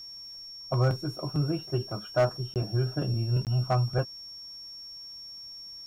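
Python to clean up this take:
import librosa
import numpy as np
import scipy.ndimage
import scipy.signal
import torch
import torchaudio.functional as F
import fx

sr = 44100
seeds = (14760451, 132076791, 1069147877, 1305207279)

y = fx.fix_declip(x, sr, threshold_db=-17.0)
y = fx.notch(y, sr, hz=5500.0, q=30.0)
y = fx.fix_interpolate(y, sr, at_s=(2.54, 3.45), length_ms=18.0)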